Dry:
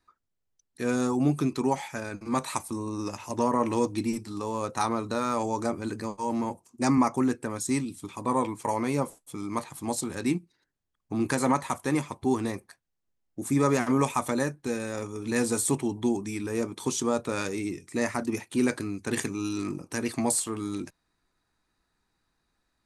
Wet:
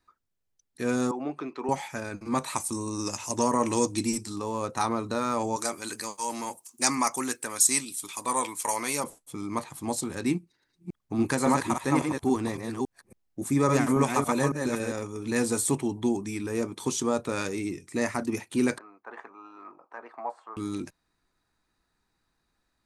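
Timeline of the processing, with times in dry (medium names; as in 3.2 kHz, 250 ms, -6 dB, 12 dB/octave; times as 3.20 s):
1.11–1.69 s: band-pass 470–2300 Hz
2.58–4.36 s: peaking EQ 7.4 kHz +12.5 dB 1.5 oct
5.56–9.04 s: tilt EQ +4.5 dB/octave
10.35–14.92 s: chunks repeated in reverse 278 ms, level -4 dB
18.78–20.57 s: Butterworth band-pass 940 Hz, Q 1.3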